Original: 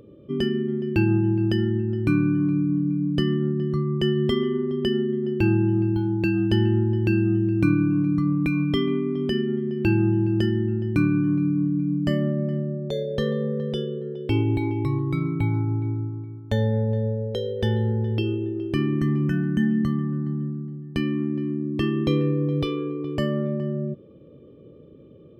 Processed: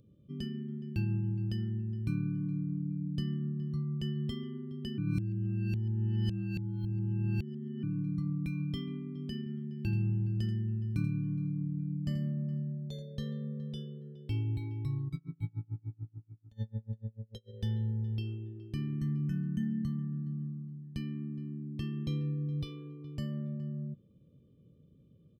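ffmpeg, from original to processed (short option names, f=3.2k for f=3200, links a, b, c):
-filter_complex "[0:a]asettb=1/sr,asplit=3[a][b][c];[a]atrim=end=9.384[d];[b]atrim=start=9.38:end=13.02,asetpts=PTS-STARTPTS,afade=t=in:d=0.004:c=qsin,afade=t=out:st=3.636:d=0.004:c=qsin,aecho=1:1:83:0.316,atrim=end_sample=160524[e];[c]atrim=start=13.016[f];[d][e]acrossfade=d=0.004:c1=hsin:c2=qsin[g];[g][f]acrossfade=d=0.004:c1=qsin:c2=hsin,asplit=3[h][i][j];[h]afade=t=out:st=15.08:d=0.02[k];[i]aeval=exprs='val(0)*pow(10,-34*(0.5-0.5*cos(2*PI*6.8*n/s))/20)':c=same,afade=t=in:st=15.08:d=0.02,afade=t=out:st=17.52:d=0.02[l];[j]afade=t=in:st=17.52:d=0.02[m];[k][l][m]amix=inputs=3:normalize=0,asplit=3[n][o][p];[n]atrim=end=4.982[q];[o]atrim=start=4.978:end=7.832,asetpts=PTS-STARTPTS,areverse[r];[p]atrim=start=7.828[s];[q][r]acrossfade=d=0.004:c1=hsin:c2=hsin[t];[t][s]acrossfade=d=0.004:c1=hsin:c2=hsin,firequalizer=gain_entry='entry(180,0);entry(340,-15);entry(1600,-13);entry(4300,-1)':delay=0.05:min_phase=1,volume=-8.5dB"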